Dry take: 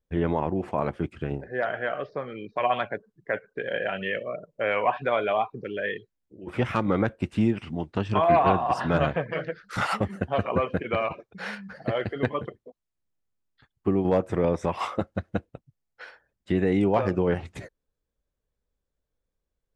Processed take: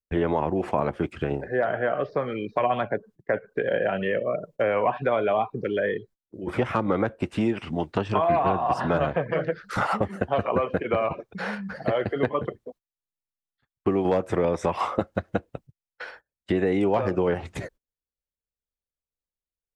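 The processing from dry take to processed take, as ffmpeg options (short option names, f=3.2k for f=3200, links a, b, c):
-filter_complex "[0:a]asettb=1/sr,asplit=3[a][b][c];[a]atrim=end=5.674[d];[b]atrim=start=5.67:end=6.58,asetpts=PTS-STARTPTS,afade=t=in:d=0.004:c=qsin,afade=t=out:st=0.906:d=0.004:c=qsin,bandreject=f=2.7k:w=6.3[e];[c]atrim=start=6.576[f];[d][e]acrossfade=d=0.004:c1=hsin:c2=qsin[g];[g][f]acrossfade=d=0.004:c1=qsin:c2=hsin,agate=range=-24dB:threshold=-53dB:ratio=16:detection=peak,acrossover=split=340|1300[h][i][j];[h]acompressor=threshold=-37dB:ratio=4[k];[i]acompressor=threshold=-30dB:ratio=4[l];[j]acompressor=threshold=-46dB:ratio=4[m];[k][l][m]amix=inputs=3:normalize=0,volume=7.5dB"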